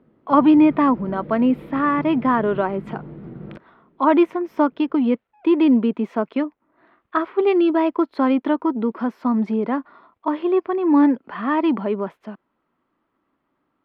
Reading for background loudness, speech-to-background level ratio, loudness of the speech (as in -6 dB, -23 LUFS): -37.0 LUFS, 17.0 dB, -20.0 LUFS